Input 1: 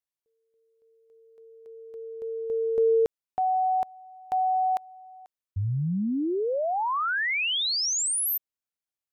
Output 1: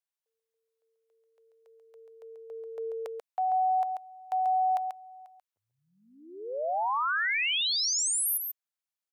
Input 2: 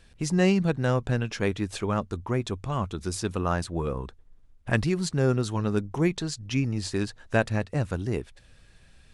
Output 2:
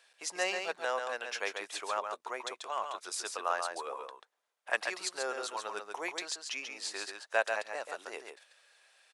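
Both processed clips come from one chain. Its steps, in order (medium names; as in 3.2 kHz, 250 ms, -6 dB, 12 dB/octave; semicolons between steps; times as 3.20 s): high-pass 590 Hz 24 dB/octave; on a send: delay 138 ms -5.5 dB; on the sum: trim -2.5 dB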